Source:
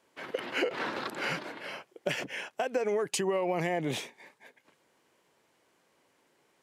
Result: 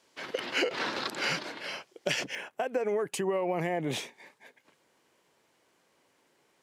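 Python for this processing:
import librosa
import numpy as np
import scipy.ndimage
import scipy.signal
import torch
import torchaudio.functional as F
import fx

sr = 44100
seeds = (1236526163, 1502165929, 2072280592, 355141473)

y = fx.peak_eq(x, sr, hz=5100.0, db=fx.steps((0.0, 9.5), (2.35, -7.5), (3.91, 2.0)), octaves=1.5)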